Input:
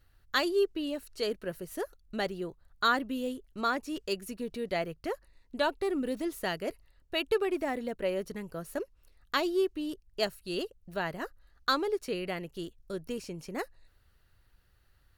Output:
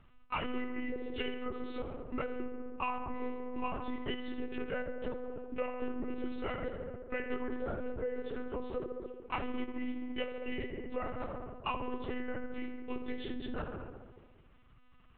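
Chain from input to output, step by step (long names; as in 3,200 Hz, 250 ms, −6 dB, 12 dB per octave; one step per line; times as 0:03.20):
partials spread apart or drawn together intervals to 85%
on a send: feedback echo with a low-pass in the loop 68 ms, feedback 73%, low-pass 2,600 Hz, level −7 dB
on the sum: downward compressor 6 to 1, threshold −40 dBFS, peak gain reduction 16.5 dB
one-pitch LPC vocoder at 8 kHz 250 Hz
level +6 dB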